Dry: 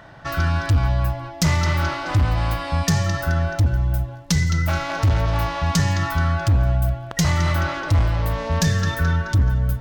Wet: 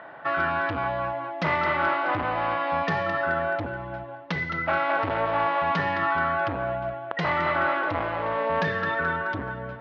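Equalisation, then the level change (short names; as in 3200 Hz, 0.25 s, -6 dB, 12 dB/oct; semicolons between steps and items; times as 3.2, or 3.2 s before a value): BPF 420–2900 Hz; air absorption 330 m; +5.0 dB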